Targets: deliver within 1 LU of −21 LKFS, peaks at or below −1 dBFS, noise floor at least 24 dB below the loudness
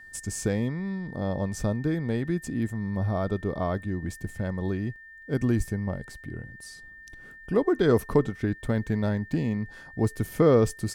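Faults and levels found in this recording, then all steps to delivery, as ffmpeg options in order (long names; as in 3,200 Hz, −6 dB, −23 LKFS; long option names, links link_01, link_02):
interfering tone 1,800 Hz; level of the tone −45 dBFS; integrated loudness −27.5 LKFS; sample peak −8.0 dBFS; target loudness −21.0 LKFS
→ -af "bandreject=frequency=1800:width=30"
-af "volume=6.5dB"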